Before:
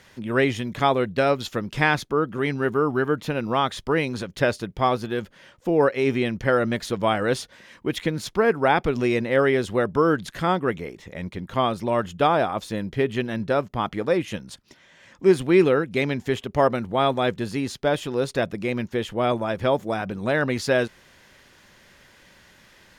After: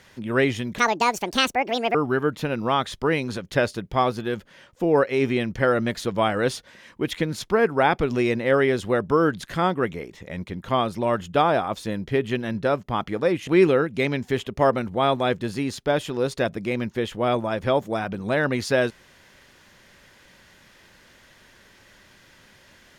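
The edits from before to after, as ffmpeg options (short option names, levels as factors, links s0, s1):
-filter_complex "[0:a]asplit=4[s0][s1][s2][s3];[s0]atrim=end=0.784[s4];[s1]atrim=start=0.78:end=2.8,asetpts=PTS-STARTPTS,asetrate=76293,aresample=44100,atrim=end_sample=51492,asetpts=PTS-STARTPTS[s5];[s2]atrim=start=2.796:end=14.332[s6];[s3]atrim=start=15.448[s7];[s4][s5]acrossfade=d=0.004:c1=hsin:c2=hsin[s8];[s8][s6]acrossfade=d=0.004:c1=hsin:c2=hsin[s9];[s9][s7]acrossfade=d=0.004:c1=hsin:c2=hsin"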